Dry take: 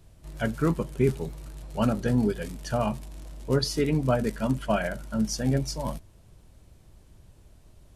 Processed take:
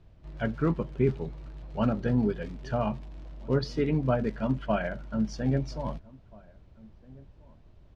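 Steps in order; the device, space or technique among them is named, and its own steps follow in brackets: shout across a valley (air absorption 220 m; outdoor echo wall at 280 m, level -24 dB); gain -1.5 dB

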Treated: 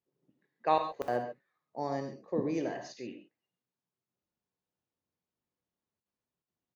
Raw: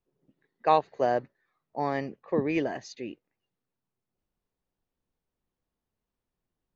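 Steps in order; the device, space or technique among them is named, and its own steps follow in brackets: call with lost packets (HPF 100 Hz 12 dB/oct; downsampling 16000 Hz; packet loss packets of 60 ms); 1.78–2.61 EQ curve 590 Hz 0 dB, 2700 Hz -11 dB, 5700 Hz +9 dB; non-linear reverb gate 0.16 s flat, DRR 5 dB; gain -5.5 dB

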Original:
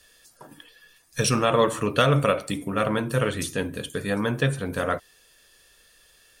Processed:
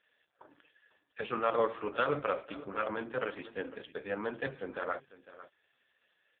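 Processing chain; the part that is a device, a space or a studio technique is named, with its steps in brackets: satellite phone (BPF 340–3400 Hz; echo 0.501 s -16 dB; gain -6.5 dB; AMR-NB 4.75 kbps 8000 Hz)

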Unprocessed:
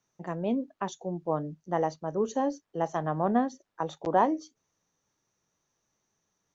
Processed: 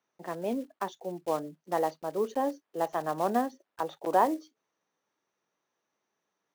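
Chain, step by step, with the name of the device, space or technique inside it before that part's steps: early digital voice recorder (BPF 290–3500 Hz; block floating point 5-bit)

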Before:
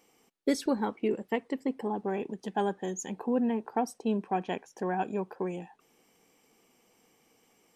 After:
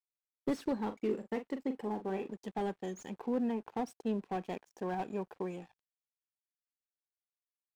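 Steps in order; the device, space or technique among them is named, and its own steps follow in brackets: early transistor amplifier (crossover distortion -53.5 dBFS; slew limiter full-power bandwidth 29 Hz); 0.79–2.3 doubler 42 ms -9.5 dB; gain -4.5 dB

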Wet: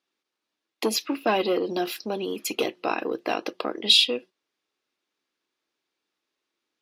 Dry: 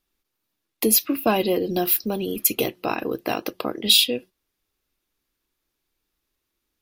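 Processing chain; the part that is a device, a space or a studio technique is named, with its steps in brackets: public-address speaker with an overloaded transformer (core saturation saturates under 960 Hz; BPF 290–5600 Hz)

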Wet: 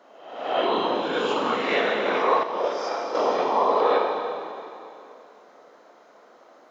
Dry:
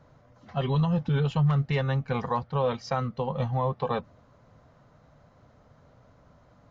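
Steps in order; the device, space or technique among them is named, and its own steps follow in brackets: spectral swells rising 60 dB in 0.89 s; whispering ghost (whisperiser; HPF 350 Hz 24 dB/oct; reverb RT60 2.7 s, pre-delay 26 ms, DRR 0 dB); 2.43–3.15 gate -19 dBFS, range -7 dB; gain +4 dB

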